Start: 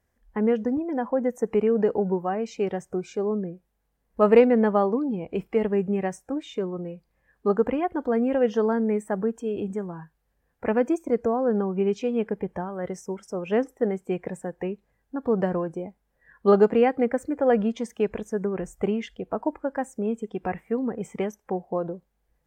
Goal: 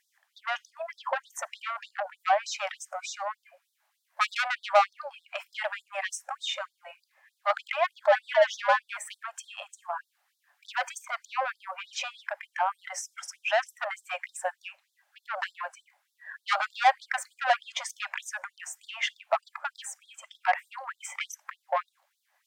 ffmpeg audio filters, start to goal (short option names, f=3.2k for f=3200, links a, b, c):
-filter_complex "[0:a]asettb=1/sr,asplit=3[a][b][c];[a]atrim=end=8.024[d];[b]atrim=start=8.02:end=8.97,asetpts=PTS-STARTPTS,afade=t=in:d=0.004:c=qsin,afade=t=out:st=0.946:d=0.004:c=qsin,afreqshift=120[e];[c]atrim=start=8.966[f];[d][e]acrossfade=d=0.004:c1=hsin:c2=qsin[g];[g][f]acrossfade=d=0.004:c1=qsin:c2=hsin,asplit=2[h][i];[i]highpass=f=720:p=1,volume=22dB,asoftclip=type=tanh:threshold=-5dB[j];[h][j]amix=inputs=2:normalize=0,lowpass=f=5.5k:p=1,volume=-6dB,afftfilt=real='re*gte(b*sr/1024,530*pow(3500/530,0.5+0.5*sin(2*PI*3.3*pts/sr)))':imag='im*gte(b*sr/1024,530*pow(3500/530,0.5+0.5*sin(2*PI*3.3*pts/sr)))':win_size=1024:overlap=0.75,volume=-3dB"